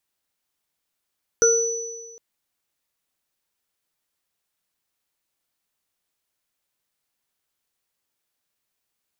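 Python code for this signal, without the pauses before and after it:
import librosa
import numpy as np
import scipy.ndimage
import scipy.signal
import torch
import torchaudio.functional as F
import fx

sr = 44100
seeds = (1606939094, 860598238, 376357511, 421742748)

y = fx.additive_free(sr, length_s=0.76, hz=459.0, level_db=-14.5, upper_db=(-7.0, -0.5), decay_s=1.41, upper_decays_s=(0.36, 1.52), upper_hz=(1410.0, 5960.0))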